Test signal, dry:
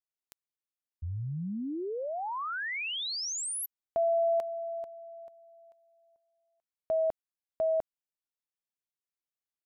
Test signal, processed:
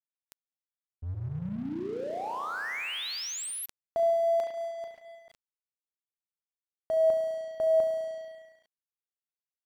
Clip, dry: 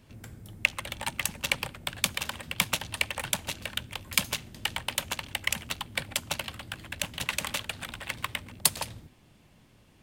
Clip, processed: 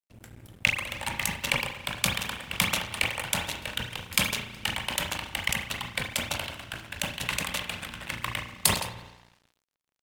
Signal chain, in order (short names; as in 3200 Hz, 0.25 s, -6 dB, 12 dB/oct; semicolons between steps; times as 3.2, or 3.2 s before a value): spring tank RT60 1.9 s, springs 34 ms, chirp 55 ms, DRR 4.5 dB; crossover distortion -49 dBFS; sustainer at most 110 dB/s